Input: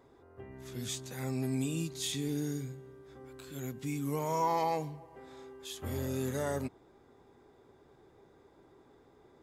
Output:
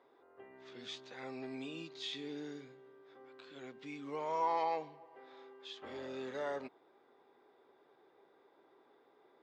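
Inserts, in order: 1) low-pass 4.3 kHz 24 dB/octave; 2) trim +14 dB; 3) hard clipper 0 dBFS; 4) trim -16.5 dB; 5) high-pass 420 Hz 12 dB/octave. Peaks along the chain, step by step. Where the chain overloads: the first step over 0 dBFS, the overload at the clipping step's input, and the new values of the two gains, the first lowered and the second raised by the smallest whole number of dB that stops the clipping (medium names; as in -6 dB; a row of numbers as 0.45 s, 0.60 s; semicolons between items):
-19.5 dBFS, -5.5 dBFS, -5.5 dBFS, -22.0 dBFS, -23.0 dBFS; nothing clips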